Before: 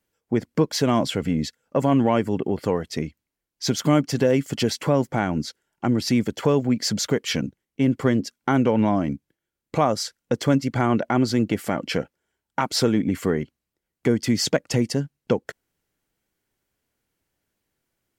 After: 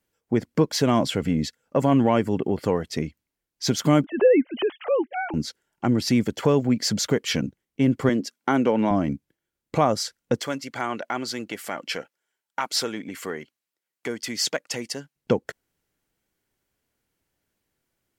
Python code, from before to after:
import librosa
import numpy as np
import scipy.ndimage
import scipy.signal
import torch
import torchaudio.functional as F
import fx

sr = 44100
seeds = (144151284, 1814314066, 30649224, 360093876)

y = fx.sine_speech(x, sr, at=(4.04, 5.34))
y = fx.highpass(y, sr, hz=210.0, slope=12, at=(8.09, 8.91))
y = fx.highpass(y, sr, hz=1100.0, slope=6, at=(10.4, 15.16))